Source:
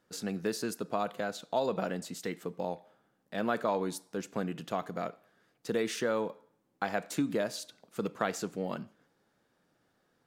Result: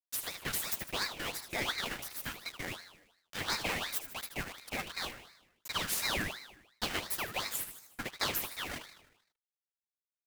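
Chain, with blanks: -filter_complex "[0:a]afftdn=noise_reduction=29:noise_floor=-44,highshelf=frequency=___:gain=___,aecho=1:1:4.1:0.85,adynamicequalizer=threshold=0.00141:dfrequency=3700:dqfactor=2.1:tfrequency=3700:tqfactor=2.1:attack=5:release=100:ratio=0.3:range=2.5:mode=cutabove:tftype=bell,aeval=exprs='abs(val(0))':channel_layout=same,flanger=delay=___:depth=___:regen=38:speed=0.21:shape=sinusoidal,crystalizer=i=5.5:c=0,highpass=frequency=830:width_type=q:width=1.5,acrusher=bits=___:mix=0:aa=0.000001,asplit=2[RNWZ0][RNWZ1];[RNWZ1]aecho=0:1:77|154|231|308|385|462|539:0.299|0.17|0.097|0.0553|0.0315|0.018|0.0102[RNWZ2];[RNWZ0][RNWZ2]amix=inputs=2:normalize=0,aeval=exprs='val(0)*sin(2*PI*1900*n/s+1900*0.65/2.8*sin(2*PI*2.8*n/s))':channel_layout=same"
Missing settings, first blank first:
6900, 3, 5.5, 6.9, 6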